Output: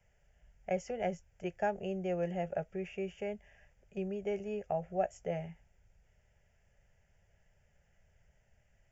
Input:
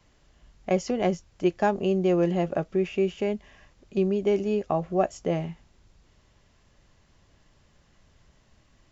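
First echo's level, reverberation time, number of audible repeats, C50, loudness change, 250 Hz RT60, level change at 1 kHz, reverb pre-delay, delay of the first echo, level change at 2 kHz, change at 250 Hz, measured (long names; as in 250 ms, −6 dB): no echo audible, no reverb audible, no echo audible, no reverb audible, −11.0 dB, no reverb audible, −9.0 dB, no reverb audible, no echo audible, −8.0 dB, −14.0 dB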